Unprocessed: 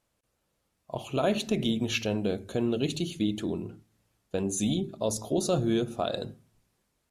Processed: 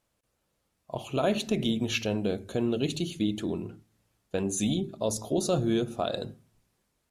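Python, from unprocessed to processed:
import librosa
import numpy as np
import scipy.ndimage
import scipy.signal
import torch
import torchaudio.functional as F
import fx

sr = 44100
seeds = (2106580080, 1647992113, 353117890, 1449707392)

y = fx.dynamic_eq(x, sr, hz=1800.0, q=0.93, threshold_db=-53.0, ratio=4.0, max_db=4, at=(3.49, 4.67))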